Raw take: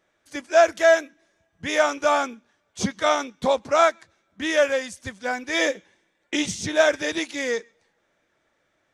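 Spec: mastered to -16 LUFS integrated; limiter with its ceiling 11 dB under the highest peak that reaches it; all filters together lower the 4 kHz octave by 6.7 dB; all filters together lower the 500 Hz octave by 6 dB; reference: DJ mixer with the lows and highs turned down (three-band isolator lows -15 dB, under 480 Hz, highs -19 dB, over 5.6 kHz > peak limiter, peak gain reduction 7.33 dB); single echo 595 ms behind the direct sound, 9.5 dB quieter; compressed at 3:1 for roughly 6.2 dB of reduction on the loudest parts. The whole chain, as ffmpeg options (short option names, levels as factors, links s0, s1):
-filter_complex "[0:a]equalizer=f=500:t=o:g=-5.5,equalizer=f=4000:t=o:g=-7,acompressor=threshold=0.0794:ratio=3,alimiter=limit=0.0631:level=0:latency=1,acrossover=split=480 5600:gain=0.178 1 0.112[s0][s1][s2];[s0][s1][s2]amix=inputs=3:normalize=0,aecho=1:1:595:0.335,volume=16.8,alimiter=limit=0.501:level=0:latency=1"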